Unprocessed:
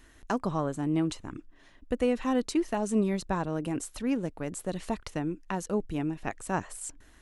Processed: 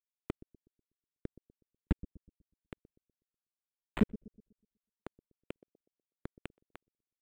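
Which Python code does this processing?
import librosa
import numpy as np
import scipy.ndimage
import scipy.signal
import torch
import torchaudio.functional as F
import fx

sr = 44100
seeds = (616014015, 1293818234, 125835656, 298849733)

p1 = fx.tracing_dist(x, sr, depth_ms=0.14)
p2 = fx.gate_flip(p1, sr, shuts_db=-29.0, range_db=-25)
p3 = fx.quant_dither(p2, sr, seeds[0], bits=6, dither='none')
p4 = scipy.signal.sosfilt(scipy.signal.cheby2(4, 50, [930.0, 4800.0], 'bandstop', fs=sr, output='sos'), p3)
p5 = p4 + fx.echo_filtered(p4, sr, ms=123, feedback_pct=37, hz=1800.0, wet_db=-17, dry=0)
p6 = np.interp(np.arange(len(p5)), np.arange(len(p5))[::8], p5[::8])
y = F.gain(torch.from_numpy(p6), 14.5).numpy()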